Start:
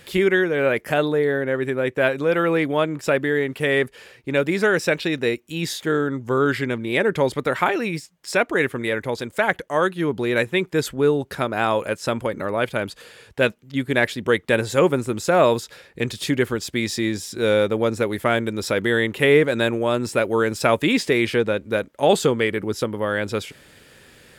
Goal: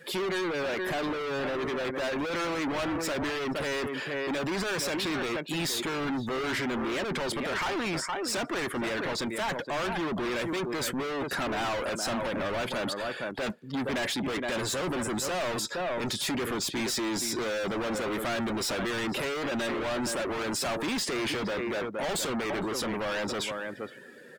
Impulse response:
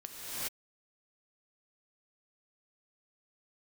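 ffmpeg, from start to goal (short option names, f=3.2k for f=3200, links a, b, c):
-filter_complex "[0:a]asplit=2[a][b];[b]adelay=466.5,volume=-15dB,highshelf=f=4k:g=-10.5[c];[a][c]amix=inputs=2:normalize=0,acrossover=split=700|1300[d][e][f];[e]crystalizer=i=9:c=0[g];[d][g][f]amix=inputs=3:normalize=0,highpass=200,equalizer=f=2.4k:t=o:w=1.1:g=-3,dynaudnorm=f=260:g=13:m=9.5dB,volume=34dB,asoftclip=hard,volume=-34dB,afftdn=nr=16:nf=-47,adynamicequalizer=threshold=0.00224:dfrequency=460:dqfactor=4.4:tfrequency=460:tqfactor=4.4:attack=5:release=100:ratio=0.375:range=3:mode=cutabove:tftype=bell,volume=5.5dB"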